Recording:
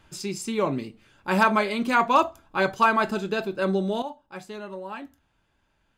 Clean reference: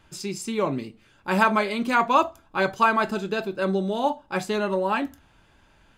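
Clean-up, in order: clip repair -9 dBFS; trim 0 dB, from 4.02 s +12 dB

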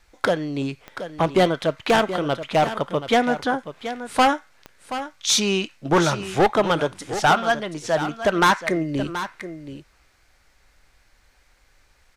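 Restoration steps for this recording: de-click; inverse comb 728 ms -11.5 dB

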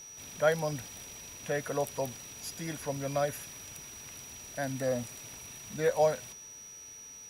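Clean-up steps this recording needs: de-hum 437 Hz, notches 13; band-stop 5.8 kHz, Q 30

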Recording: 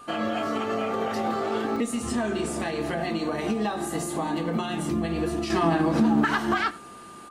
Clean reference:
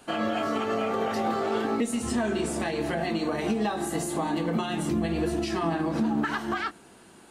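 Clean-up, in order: band-stop 1.2 kHz, Q 30; interpolate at 1.76 s, 1.7 ms; inverse comb 90 ms -21.5 dB; trim 0 dB, from 5.50 s -5 dB

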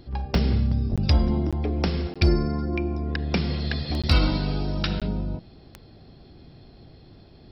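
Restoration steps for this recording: clip repair -10 dBFS; de-click; interpolate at 0.96/1.51/2.14/4.02/5.00 s, 16 ms

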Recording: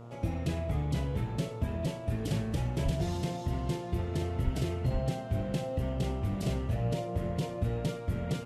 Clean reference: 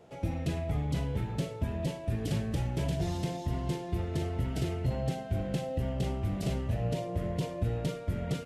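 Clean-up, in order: de-hum 117.7 Hz, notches 12; 2.84–2.96 s: high-pass 140 Hz 24 dB/octave; 4.44–4.56 s: high-pass 140 Hz 24 dB/octave; 4.92–5.04 s: high-pass 140 Hz 24 dB/octave

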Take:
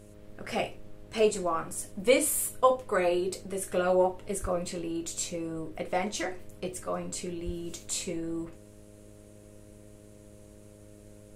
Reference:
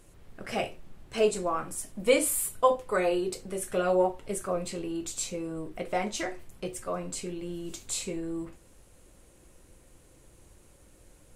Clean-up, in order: de-hum 103.9 Hz, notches 6; 4.41–4.53 s: high-pass 140 Hz 24 dB/octave; 7.45–7.57 s: high-pass 140 Hz 24 dB/octave

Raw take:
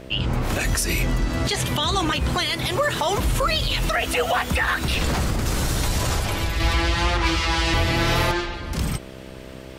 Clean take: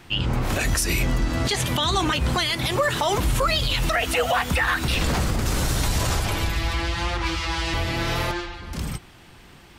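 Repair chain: de-hum 65 Hz, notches 10; gain correction -4.5 dB, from 6.60 s

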